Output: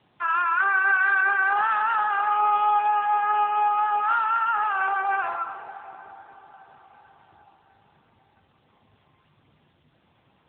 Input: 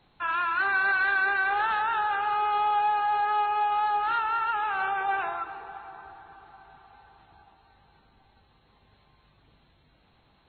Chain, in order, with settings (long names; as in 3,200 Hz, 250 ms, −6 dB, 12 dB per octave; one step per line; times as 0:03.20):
feedback echo with a high-pass in the loop 60 ms, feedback 53%, high-pass 600 Hz, level −11.5 dB
dynamic equaliser 1,200 Hz, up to +4 dB, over −42 dBFS, Q 2.8
level +2.5 dB
AMR narrowband 7.95 kbit/s 8,000 Hz